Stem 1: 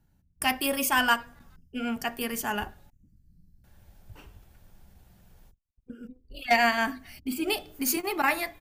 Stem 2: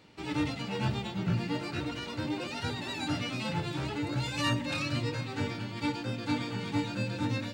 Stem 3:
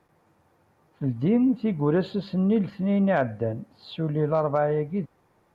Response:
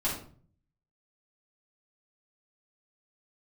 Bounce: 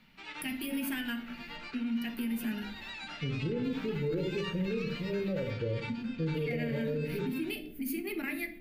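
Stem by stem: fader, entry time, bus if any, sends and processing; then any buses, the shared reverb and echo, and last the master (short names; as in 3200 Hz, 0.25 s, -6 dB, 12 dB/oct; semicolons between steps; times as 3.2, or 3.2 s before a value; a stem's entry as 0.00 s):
+1.5 dB, 0.00 s, bus A, send -20.5 dB, EQ curve 130 Hz 0 dB, 210 Hz +14 dB, 1000 Hz -20 dB, 2100 Hz +3 dB, 6900 Hz -14 dB, 11000 Hz -1 dB; compressor, threshold -26 dBFS, peak gain reduction 9.5 dB
-1.0 dB, 0.00 s, bus A, send -21 dB, band-pass 2200 Hz, Q 1
-7.0 dB, 2.20 s, no bus, send -9 dB, steep low-pass 550 Hz 96 dB/oct; comb 2.1 ms, depth 65%
bus A: 0.0 dB, HPF 210 Hz 6 dB/oct; compressor 2:1, threshold -42 dBFS, peak gain reduction 10 dB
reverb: on, RT60 0.45 s, pre-delay 3 ms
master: limiter -25 dBFS, peak gain reduction 10.5 dB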